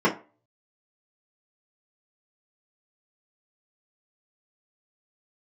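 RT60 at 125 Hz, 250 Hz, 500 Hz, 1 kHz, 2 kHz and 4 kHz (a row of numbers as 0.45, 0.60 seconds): 0.30, 0.30, 0.35, 0.35, 0.30, 0.20 seconds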